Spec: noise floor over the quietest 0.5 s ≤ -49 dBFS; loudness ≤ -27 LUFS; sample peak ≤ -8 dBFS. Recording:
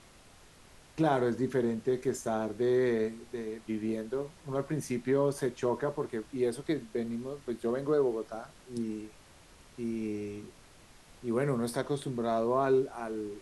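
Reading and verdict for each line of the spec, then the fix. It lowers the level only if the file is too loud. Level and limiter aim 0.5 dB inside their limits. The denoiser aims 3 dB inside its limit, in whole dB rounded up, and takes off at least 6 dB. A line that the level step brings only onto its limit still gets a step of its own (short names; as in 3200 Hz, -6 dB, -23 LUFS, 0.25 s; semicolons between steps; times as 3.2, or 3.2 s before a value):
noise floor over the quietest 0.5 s -56 dBFS: OK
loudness -32.5 LUFS: OK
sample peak -15.0 dBFS: OK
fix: none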